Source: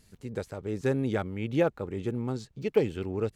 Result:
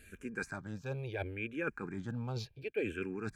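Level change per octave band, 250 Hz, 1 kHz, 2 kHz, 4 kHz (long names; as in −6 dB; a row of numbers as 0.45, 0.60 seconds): −9.5, −7.5, +0.5, −4.5 decibels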